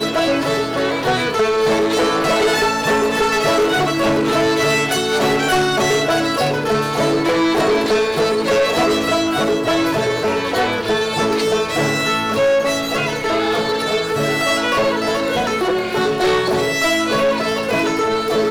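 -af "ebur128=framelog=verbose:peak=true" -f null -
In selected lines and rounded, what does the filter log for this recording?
Integrated loudness:
  I:         -16.9 LUFS
  Threshold: -26.9 LUFS
Loudness range:
  LRA:         1.6 LU
  Threshold: -36.8 LUFS
  LRA low:   -17.6 LUFS
  LRA high:  -16.0 LUFS
True peak:
  Peak:      -11.6 dBFS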